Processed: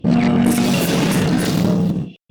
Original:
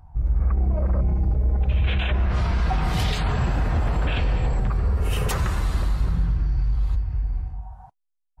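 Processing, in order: wide varispeed 3.65×; Chebyshev shaper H 3 -14 dB, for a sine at -13 dBFS; trim +8 dB

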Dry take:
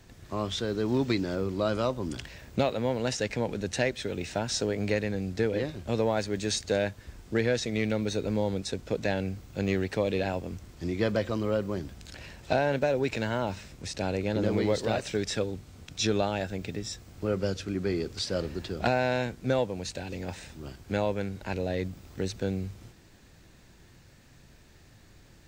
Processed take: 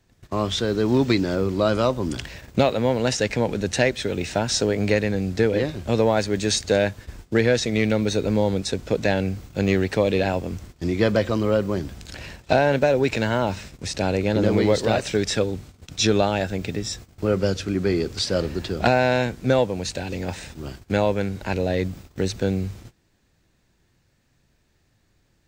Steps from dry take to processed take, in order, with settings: gate -46 dBFS, range -17 dB; trim +7.5 dB

